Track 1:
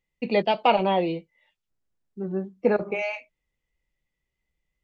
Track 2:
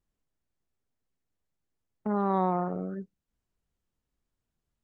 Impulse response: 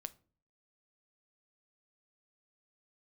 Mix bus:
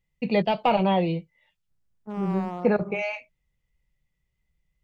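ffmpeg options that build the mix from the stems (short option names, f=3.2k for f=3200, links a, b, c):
-filter_complex "[0:a]deesser=0.9,lowshelf=f=210:t=q:w=1.5:g=7,volume=0dB[a];[1:a]agate=range=-21dB:threshold=-30dB:ratio=16:detection=peak,asoftclip=type=hard:threshold=-20dB,volume=-5.5dB[b];[a][b]amix=inputs=2:normalize=0"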